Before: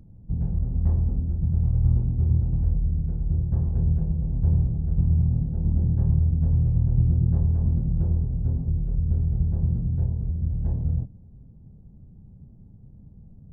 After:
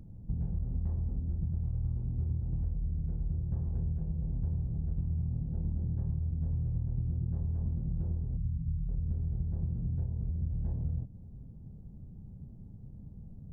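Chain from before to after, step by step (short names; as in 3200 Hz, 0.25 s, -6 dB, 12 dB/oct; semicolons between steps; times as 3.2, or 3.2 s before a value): compressor 6:1, threshold -30 dBFS, peak gain reduction 14.5 dB; 8.37–8.89 EQ curve 190 Hz 0 dB, 440 Hz -28 dB, 680 Hz -18 dB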